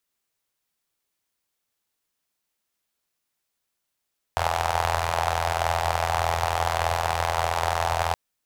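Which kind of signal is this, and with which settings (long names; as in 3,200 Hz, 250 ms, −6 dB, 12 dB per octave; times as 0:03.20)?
pulse-train model of a four-cylinder engine, steady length 3.77 s, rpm 2,500, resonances 84/760 Hz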